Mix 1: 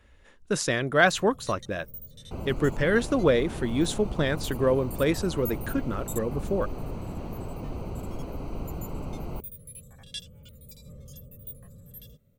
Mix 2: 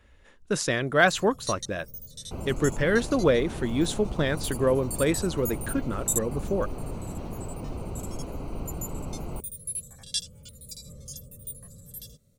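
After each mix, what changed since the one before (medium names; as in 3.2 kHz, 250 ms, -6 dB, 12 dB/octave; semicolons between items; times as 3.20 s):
first sound: add high-order bell 6.7 kHz +13.5 dB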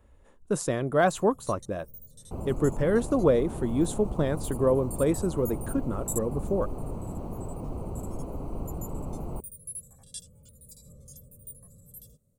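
first sound -5.5 dB; master: add high-order bell 3 kHz -11.5 dB 2.3 oct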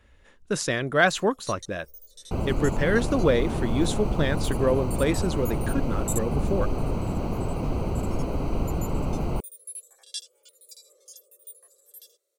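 first sound: add brick-wall FIR high-pass 330 Hz; second sound +8.0 dB; master: add high-order bell 3 kHz +11.5 dB 2.3 oct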